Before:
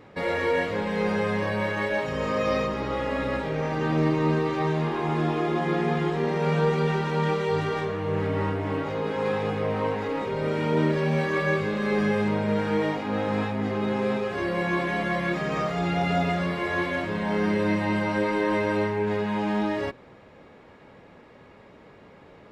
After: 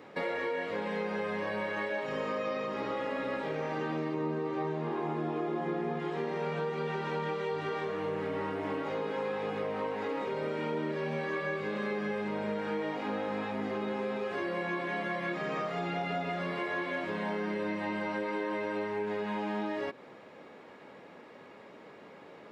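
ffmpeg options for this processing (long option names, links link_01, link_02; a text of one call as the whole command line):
ffmpeg -i in.wav -filter_complex "[0:a]asettb=1/sr,asplit=3[link_01][link_02][link_03];[link_01]atrim=end=4.144[link_04];[link_02]atrim=start=4.14:end=6,asetpts=PTS-STARTPTS,afade=type=in:duration=0.004:curve=qsin,afade=type=out:start_time=1.856:duration=0.004:curve=qsin,tiltshelf=frequency=1400:gain=5[link_05];[link_03]atrim=start=5.996[link_06];[link_04][link_05]acrossfade=duration=0.004:curve1=hsin:curve2=qsin[link_07];[link_07][link_06]acrossfade=duration=0.004:curve1=qsin:curve2=hsin,acrossover=split=4400[link_08][link_09];[link_09]acompressor=threshold=-57dB:ratio=4:attack=1:release=60[link_10];[link_08][link_10]amix=inputs=2:normalize=0,highpass=220,acompressor=threshold=-31dB:ratio=6" out.wav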